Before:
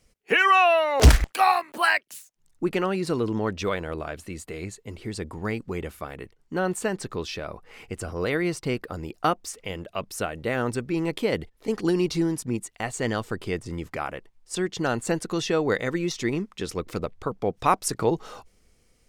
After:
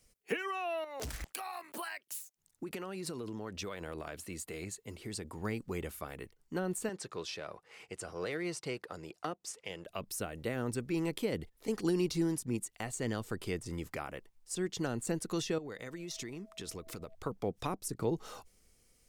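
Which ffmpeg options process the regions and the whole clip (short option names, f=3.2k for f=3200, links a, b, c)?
-filter_complex "[0:a]asettb=1/sr,asplit=3[a][b][c];[a]atrim=end=0.844[d];[b]atrim=start=0.84:end=5.39,asetpts=PTS-STARTPTS,afade=t=in:d=0.004:c=qsin,afade=t=out:st=4.546:d=0.004:c=qsin,highpass=f=82:p=1,acompressor=threshold=-29dB:ratio=16:attack=3.2:release=140:knee=1:detection=peak[e];[c]atrim=start=5.386[f];[d][e]acrossfade=d=0.004:c1=hsin:c2=qsin[g];[g][f]acrossfade=d=0.004:c1=qsin:c2=hsin,asettb=1/sr,asplit=3[h][i][j];[h]atrim=end=6.894[k];[i]atrim=start=6.89:end=9.86,asetpts=PTS-STARTPTS,afade=t=in:d=0.004:c=qsin,afade=t=out:st=2.966:d=0.004:c=qsin,aeval=exprs='if(lt(val(0),0),0.708*val(0),val(0))':c=same,highpass=150,lowpass=7.9k,equalizer=f=240:t=o:w=0.65:g=-8[l];[j]atrim=start=9.856[m];[k][l]acrossfade=d=0.004:c1=hsin:c2=qsin[n];[n][m]acrossfade=d=0.004:c1=qsin:c2=hsin,asettb=1/sr,asplit=3[o][p][q];[o]atrim=end=15.584[r];[p]atrim=start=15.58:end=17.15,asetpts=PTS-STARTPTS,afade=t=in:d=0.004:c=qsin,afade=t=out:st=1.566:d=0.004:c=qsin,aeval=exprs='val(0)+0.00282*sin(2*PI*650*n/s)':c=same,acompressor=threshold=-33dB:ratio=6:attack=3.2:release=140:knee=1:detection=peak[s];[q]atrim=start=17.146[t];[r][s]acrossfade=d=0.004:c1=hsin:c2=qsin[u];[u][t]acrossfade=d=0.004:c1=qsin:c2=hsin,highshelf=f=6.3k:g=11.5,acrossover=split=430[v][w];[w]acompressor=threshold=-30dB:ratio=10[x];[v][x]amix=inputs=2:normalize=0,volume=-7dB"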